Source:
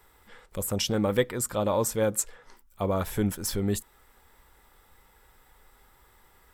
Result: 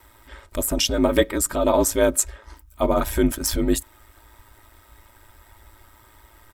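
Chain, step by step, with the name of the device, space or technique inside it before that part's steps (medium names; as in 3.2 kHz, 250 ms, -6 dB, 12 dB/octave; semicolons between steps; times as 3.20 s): ring-modulated robot voice (ring modulator 55 Hz; comb 3.2 ms, depth 67%); trim +8.5 dB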